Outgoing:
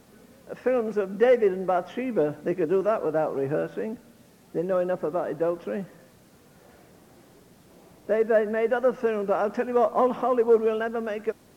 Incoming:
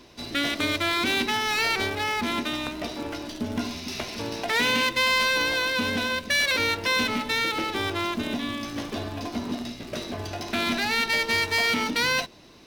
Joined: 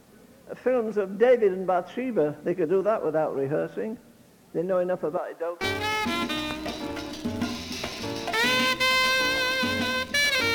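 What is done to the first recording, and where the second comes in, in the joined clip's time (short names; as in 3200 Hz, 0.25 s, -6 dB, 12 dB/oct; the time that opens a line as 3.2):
outgoing
5.17–5.61 HPF 630 Hz 12 dB/oct
5.61 switch to incoming from 1.77 s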